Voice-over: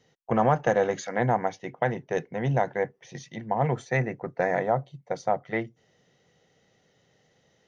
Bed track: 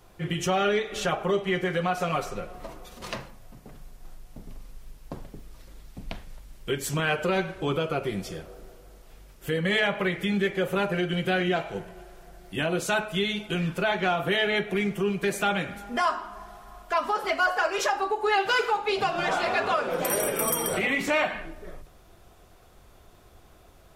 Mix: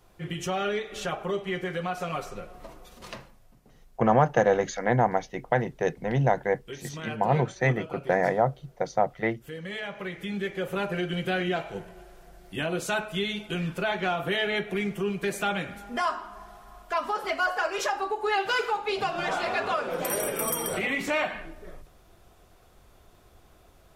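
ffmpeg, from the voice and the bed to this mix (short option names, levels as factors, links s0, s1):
-filter_complex "[0:a]adelay=3700,volume=1.19[s0];[1:a]volume=1.68,afade=t=out:st=2.94:d=0.63:silence=0.446684,afade=t=in:st=9.82:d=1.18:silence=0.354813[s1];[s0][s1]amix=inputs=2:normalize=0"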